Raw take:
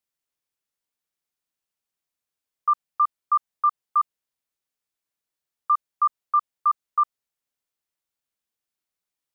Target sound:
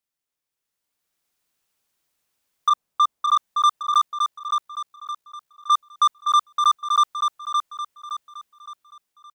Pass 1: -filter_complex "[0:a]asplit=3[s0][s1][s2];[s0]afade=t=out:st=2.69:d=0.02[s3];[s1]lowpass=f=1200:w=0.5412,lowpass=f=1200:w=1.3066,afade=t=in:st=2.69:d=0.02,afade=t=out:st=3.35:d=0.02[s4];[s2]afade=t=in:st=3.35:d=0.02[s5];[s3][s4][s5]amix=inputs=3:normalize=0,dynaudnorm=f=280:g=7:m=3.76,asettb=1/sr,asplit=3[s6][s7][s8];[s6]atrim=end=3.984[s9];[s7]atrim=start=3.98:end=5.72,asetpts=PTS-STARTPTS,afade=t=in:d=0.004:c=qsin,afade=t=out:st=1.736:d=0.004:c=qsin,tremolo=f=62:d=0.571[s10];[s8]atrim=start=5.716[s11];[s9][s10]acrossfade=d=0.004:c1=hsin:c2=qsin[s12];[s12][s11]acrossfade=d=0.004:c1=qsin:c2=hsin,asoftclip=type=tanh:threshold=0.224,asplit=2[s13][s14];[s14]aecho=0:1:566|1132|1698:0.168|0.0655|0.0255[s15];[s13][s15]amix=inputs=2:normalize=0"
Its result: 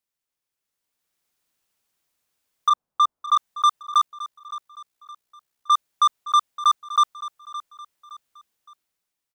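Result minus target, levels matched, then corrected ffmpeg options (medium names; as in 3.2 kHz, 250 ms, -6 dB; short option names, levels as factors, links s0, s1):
echo-to-direct -10.5 dB
-filter_complex "[0:a]asplit=3[s0][s1][s2];[s0]afade=t=out:st=2.69:d=0.02[s3];[s1]lowpass=f=1200:w=0.5412,lowpass=f=1200:w=1.3066,afade=t=in:st=2.69:d=0.02,afade=t=out:st=3.35:d=0.02[s4];[s2]afade=t=in:st=3.35:d=0.02[s5];[s3][s4][s5]amix=inputs=3:normalize=0,dynaudnorm=f=280:g=7:m=3.76,asettb=1/sr,asplit=3[s6][s7][s8];[s6]atrim=end=3.984[s9];[s7]atrim=start=3.98:end=5.72,asetpts=PTS-STARTPTS,afade=t=in:d=0.004:c=qsin,afade=t=out:st=1.736:d=0.004:c=qsin,tremolo=f=62:d=0.571[s10];[s8]atrim=start=5.716[s11];[s9][s10]acrossfade=d=0.004:c1=hsin:c2=qsin[s12];[s12][s11]acrossfade=d=0.004:c1=qsin:c2=hsin,asoftclip=type=tanh:threshold=0.224,asplit=2[s13][s14];[s14]aecho=0:1:566|1132|1698|2264|2830:0.562|0.219|0.0855|0.0334|0.013[s15];[s13][s15]amix=inputs=2:normalize=0"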